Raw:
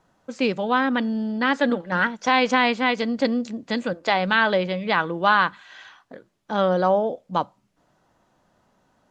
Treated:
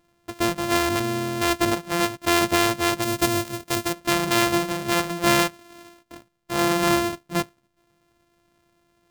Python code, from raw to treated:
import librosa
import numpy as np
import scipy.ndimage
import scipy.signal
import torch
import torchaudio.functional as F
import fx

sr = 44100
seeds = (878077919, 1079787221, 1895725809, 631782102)

y = np.r_[np.sort(x[:len(x) // 128 * 128].reshape(-1, 128), axis=1).ravel(), x[len(x) // 128 * 128:]]
y = fx.high_shelf(y, sr, hz=4500.0, db=7.5, at=(3.02, 3.93))
y = y * 10.0 ** (-1.0 / 20.0)